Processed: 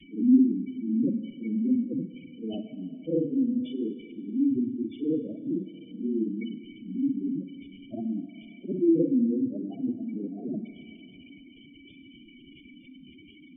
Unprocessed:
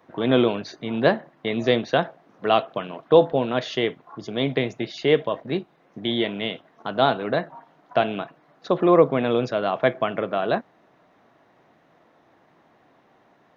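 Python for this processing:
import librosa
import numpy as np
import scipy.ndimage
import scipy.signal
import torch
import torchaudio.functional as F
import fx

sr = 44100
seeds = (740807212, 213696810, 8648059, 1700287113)

y = fx.frame_reverse(x, sr, frame_ms=131.0)
y = fx.quant_dither(y, sr, seeds[0], bits=6, dither='triangular')
y = fx.vibrato(y, sr, rate_hz=3.0, depth_cents=93.0)
y = fx.formant_cascade(y, sr, vowel='i')
y = fx.spec_gate(y, sr, threshold_db=-10, keep='strong')
y = fx.rev_schroeder(y, sr, rt60_s=2.4, comb_ms=32, drr_db=11.0)
y = y * librosa.db_to_amplitude(8.5)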